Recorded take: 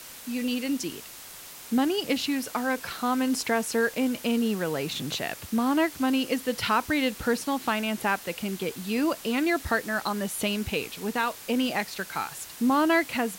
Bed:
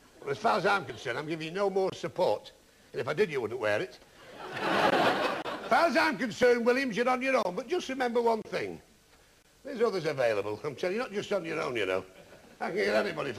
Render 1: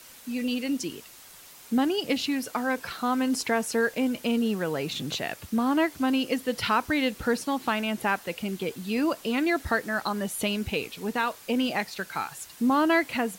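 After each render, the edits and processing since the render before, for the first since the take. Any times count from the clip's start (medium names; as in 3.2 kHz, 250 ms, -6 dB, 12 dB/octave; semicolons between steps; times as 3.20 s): noise reduction 6 dB, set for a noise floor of -44 dBFS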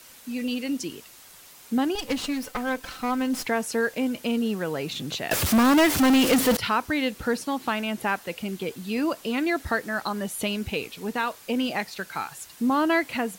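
1.95–3.46 s: comb filter that takes the minimum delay 3.9 ms; 5.31–6.57 s: power-law waveshaper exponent 0.35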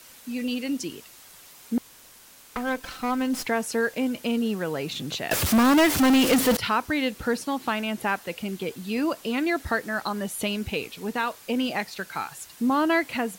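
1.78–2.56 s: room tone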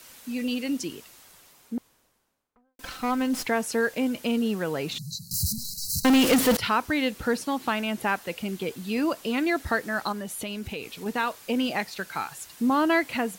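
0.76–2.79 s: studio fade out; 4.98–6.05 s: brick-wall FIR band-stop 200–3900 Hz; 10.12–11.06 s: compression 2.5:1, threshold -32 dBFS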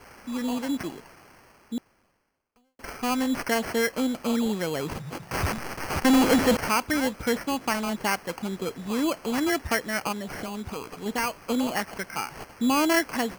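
4.31–4.53 s: painted sound fall 2.7–7.4 kHz -42 dBFS; sample-and-hold 12×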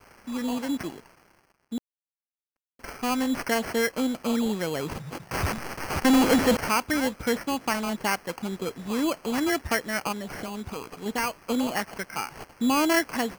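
crossover distortion -53.5 dBFS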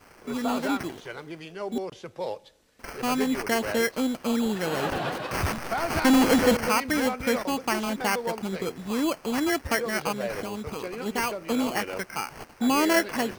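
add bed -5 dB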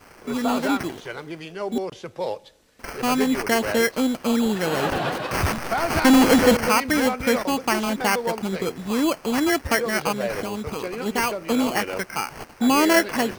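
trim +4.5 dB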